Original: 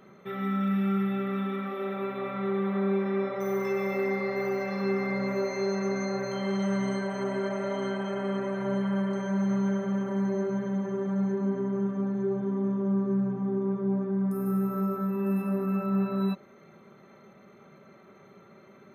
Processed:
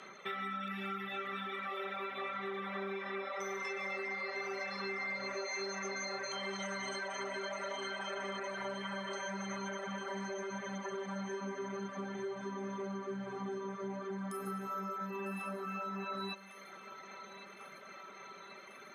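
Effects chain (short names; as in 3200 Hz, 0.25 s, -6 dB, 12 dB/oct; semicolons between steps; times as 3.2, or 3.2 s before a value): weighting filter ITU-R 468; reverb removal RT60 0.84 s; high shelf 3700 Hz -7.5 dB; compressor 5:1, threshold -44 dBFS, peak gain reduction 11.5 dB; on a send: thinning echo 1.099 s, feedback 78%, high-pass 350 Hz, level -14 dB; on the sum: gain +6 dB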